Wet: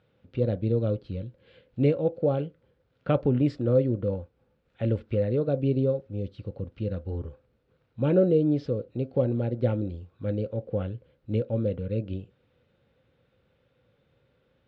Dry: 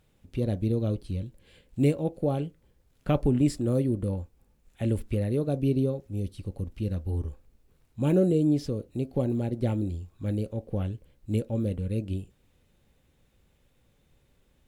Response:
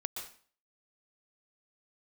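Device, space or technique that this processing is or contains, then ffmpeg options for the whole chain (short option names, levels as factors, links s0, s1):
guitar cabinet: -af "highpass=87,equalizer=f=120:t=q:w=4:g=5,equalizer=f=510:t=q:w=4:g=10,equalizer=f=1400:t=q:w=4:g=7,lowpass=f=4200:w=0.5412,lowpass=f=4200:w=1.3066,volume=0.841"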